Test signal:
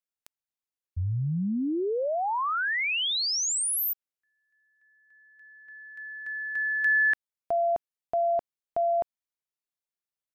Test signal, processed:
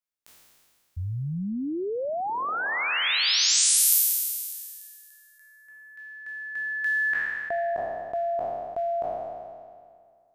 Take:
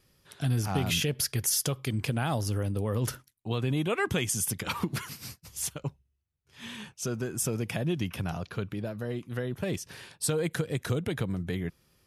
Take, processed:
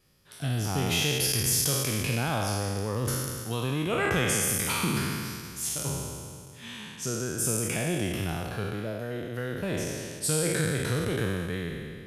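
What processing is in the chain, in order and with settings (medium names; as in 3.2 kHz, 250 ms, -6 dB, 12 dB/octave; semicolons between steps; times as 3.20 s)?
spectral sustain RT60 2.09 s; trim -2.5 dB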